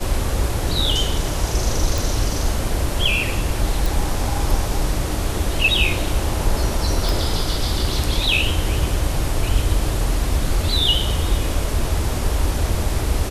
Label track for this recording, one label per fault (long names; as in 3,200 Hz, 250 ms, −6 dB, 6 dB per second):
1.980000	1.980000	click
3.860000	3.860000	click
7.090000	7.090000	click